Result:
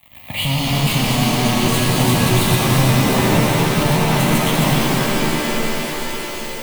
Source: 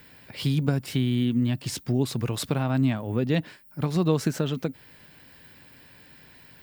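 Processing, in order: chunks repeated in reverse 145 ms, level -3.5 dB; high-pass 43 Hz 12 dB/octave; fuzz box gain 43 dB, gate -45 dBFS; static phaser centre 1.5 kHz, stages 6; on a send: thinning echo 351 ms, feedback 76%, high-pass 420 Hz, level -7 dB; on the sum: pitch-shifted reverb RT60 3.9 s, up +7 st, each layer -2 dB, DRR -2 dB; trim -4 dB

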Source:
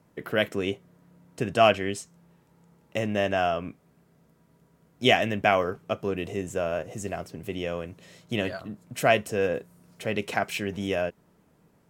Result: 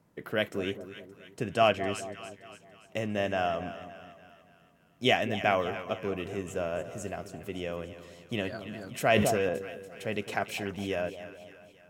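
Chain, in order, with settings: two-band feedback delay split 1 kHz, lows 208 ms, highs 286 ms, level -12 dB; 8.67–9.49 s: decay stretcher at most 24 dB/s; trim -4.5 dB

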